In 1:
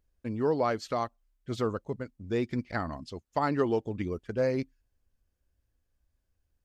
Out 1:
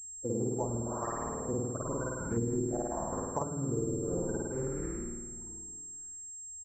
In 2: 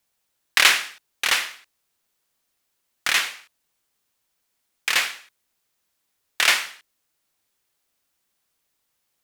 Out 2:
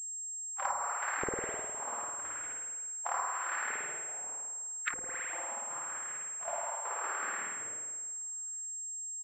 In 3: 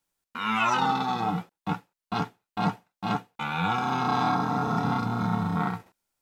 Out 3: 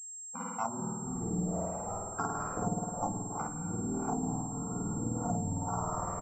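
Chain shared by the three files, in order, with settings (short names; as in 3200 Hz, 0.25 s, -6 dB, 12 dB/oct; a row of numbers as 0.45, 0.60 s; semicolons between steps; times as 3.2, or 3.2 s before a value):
bin magnitudes rounded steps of 30 dB; frequency-shifting echo 0.187 s, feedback 61%, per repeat -93 Hz, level -14.5 dB; compressor 2.5:1, threshold -37 dBFS; LFO low-pass saw up 0.81 Hz 430–2000 Hz; step gate "xxx.xx.x" 103 bpm -24 dB; spring tank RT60 1.4 s, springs 51 ms, chirp 30 ms, DRR -4.5 dB; treble ducked by the level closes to 310 Hz, closed at -25.5 dBFS; pulse-width modulation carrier 7500 Hz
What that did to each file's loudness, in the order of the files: -4.0, -15.5, -7.5 LU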